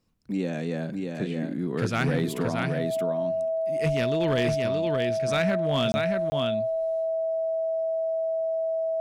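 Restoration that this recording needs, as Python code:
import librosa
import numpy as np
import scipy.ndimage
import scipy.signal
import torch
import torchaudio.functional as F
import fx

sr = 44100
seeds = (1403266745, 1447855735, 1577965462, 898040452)

y = fx.fix_declip(x, sr, threshold_db=-17.5)
y = fx.notch(y, sr, hz=650.0, q=30.0)
y = fx.fix_interpolate(y, sr, at_s=(5.92, 6.3), length_ms=20.0)
y = fx.fix_echo_inverse(y, sr, delay_ms=625, level_db=-4.0)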